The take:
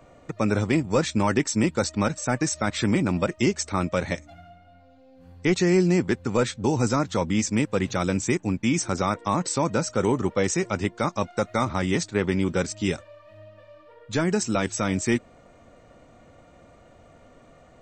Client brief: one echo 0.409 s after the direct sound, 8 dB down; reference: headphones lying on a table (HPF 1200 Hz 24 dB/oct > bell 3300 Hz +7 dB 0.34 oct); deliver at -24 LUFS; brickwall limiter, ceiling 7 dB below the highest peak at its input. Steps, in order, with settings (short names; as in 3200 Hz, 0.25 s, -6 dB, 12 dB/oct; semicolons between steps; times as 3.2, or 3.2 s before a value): limiter -17 dBFS; HPF 1200 Hz 24 dB/oct; bell 3300 Hz +7 dB 0.34 oct; echo 0.409 s -8 dB; gain +9 dB